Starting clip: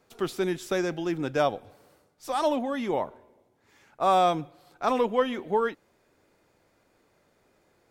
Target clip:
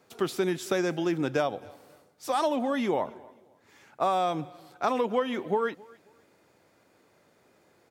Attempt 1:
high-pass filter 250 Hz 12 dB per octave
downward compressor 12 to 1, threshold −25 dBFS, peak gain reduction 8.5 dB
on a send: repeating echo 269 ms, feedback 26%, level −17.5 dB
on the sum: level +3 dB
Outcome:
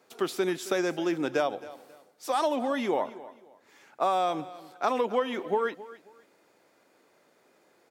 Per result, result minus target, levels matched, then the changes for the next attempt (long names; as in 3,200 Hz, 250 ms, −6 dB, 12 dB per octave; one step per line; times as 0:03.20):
125 Hz band −6.5 dB; echo-to-direct +6.5 dB
change: high-pass filter 97 Hz 12 dB per octave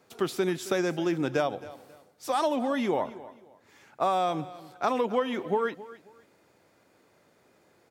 echo-to-direct +6.5 dB
change: repeating echo 269 ms, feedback 26%, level −24 dB